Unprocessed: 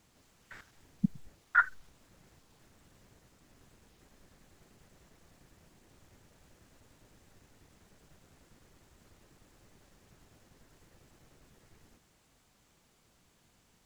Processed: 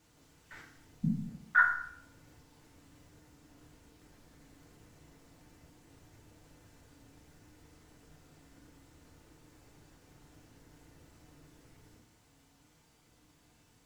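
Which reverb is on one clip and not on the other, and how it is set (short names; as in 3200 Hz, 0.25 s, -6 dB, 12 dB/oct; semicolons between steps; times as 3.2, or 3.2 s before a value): FDN reverb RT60 0.65 s, low-frequency decay 1.35×, high-frequency decay 0.75×, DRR -2.5 dB; gain -3 dB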